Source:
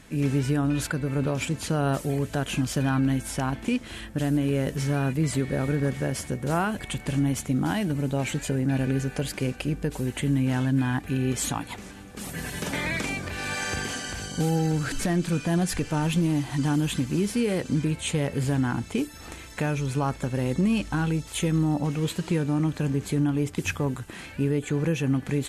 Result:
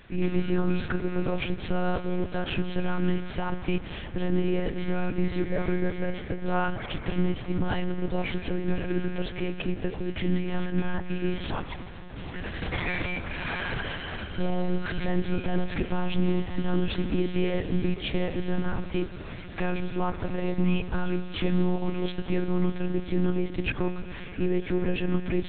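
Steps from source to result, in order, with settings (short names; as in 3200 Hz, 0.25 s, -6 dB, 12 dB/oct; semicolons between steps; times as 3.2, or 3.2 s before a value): de-hum 65.64 Hz, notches 31; on a send at -12 dB: reverb RT60 5.8 s, pre-delay 97 ms; on the sum: monotone LPC vocoder at 8 kHz 180 Hz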